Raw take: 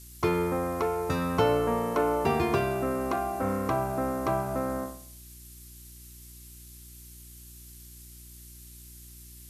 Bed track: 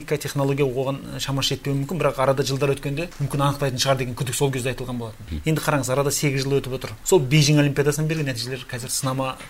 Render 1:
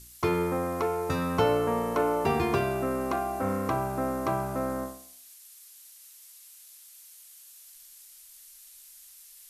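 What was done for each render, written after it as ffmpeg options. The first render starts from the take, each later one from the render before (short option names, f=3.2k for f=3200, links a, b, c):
-af "bandreject=f=60:t=h:w=4,bandreject=f=120:t=h:w=4,bandreject=f=180:t=h:w=4,bandreject=f=240:t=h:w=4,bandreject=f=300:t=h:w=4,bandreject=f=360:t=h:w=4,bandreject=f=420:t=h:w=4,bandreject=f=480:t=h:w=4,bandreject=f=540:t=h:w=4,bandreject=f=600:t=h:w=4,bandreject=f=660:t=h:w=4,bandreject=f=720:t=h:w=4"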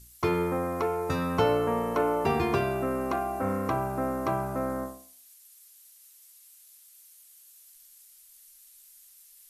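-af "afftdn=nr=6:nf=-52"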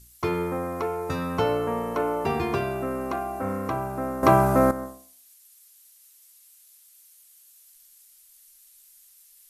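-filter_complex "[0:a]asplit=3[a][b][c];[a]atrim=end=4.232[d];[b]atrim=start=4.228:end=4.712,asetpts=PTS-STARTPTS,volume=11.5dB[e];[c]atrim=start=4.708[f];[d][e]acrossfade=d=0.004:c1=hsin:c2=hsin[g];[g][f]acrossfade=d=0.004:c1=hsin:c2=hsin"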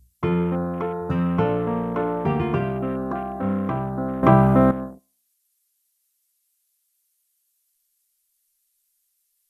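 -af "afwtdn=0.0141,equalizer=f=170:w=1.5:g=12"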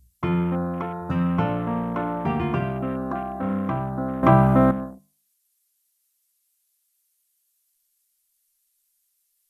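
-af "equalizer=f=430:w=7.4:g=-13.5,bandreject=f=50:t=h:w=6,bandreject=f=100:t=h:w=6,bandreject=f=150:t=h:w=6,bandreject=f=200:t=h:w=6"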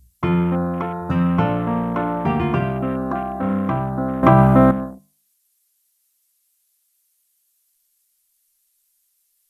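-af "volume=4.5dB,alimiter=limit=-1dB:level=0:latency=1"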